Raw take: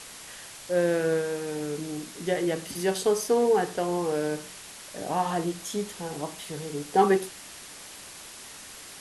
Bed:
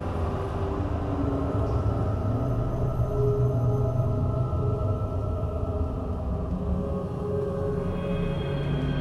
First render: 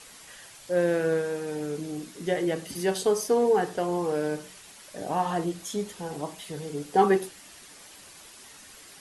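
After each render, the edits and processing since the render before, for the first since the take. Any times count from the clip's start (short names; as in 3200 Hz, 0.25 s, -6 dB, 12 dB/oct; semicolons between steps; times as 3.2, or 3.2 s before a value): denoiser 7 dB, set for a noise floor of -45 dBFS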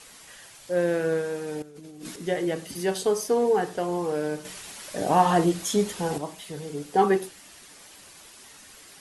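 1.62–2.16 negative-ratio compressor -43 dBFS; 4.45–6.18 gain +7.5 dB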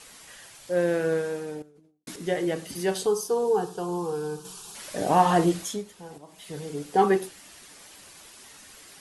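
1.25–2.07 studio fade out; 3.06–4.75 fixed phaser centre 400 Hz, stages 8; 5.55–6.55 dip -15 dB, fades 0.28 s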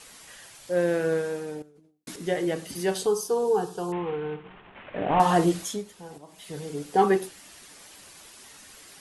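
3.92–5.2 CVSD 16 kbps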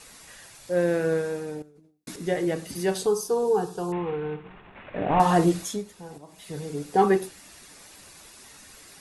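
low shelf 170 Hz +5.5 dB; notch 3100 Hz, Q 13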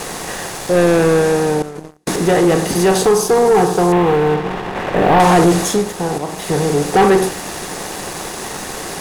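per-bin compression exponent 0.6; sample leveller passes 3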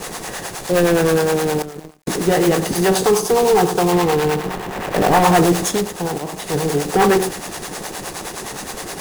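companded quantiser 4-bit; harmonic tremolo 9.6 Hz, depth 70%, crossover 480 Hz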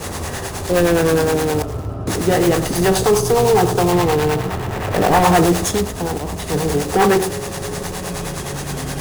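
add bed -0.5 dB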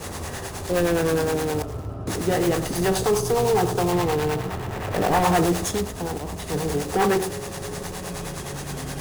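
gain -6.5 dB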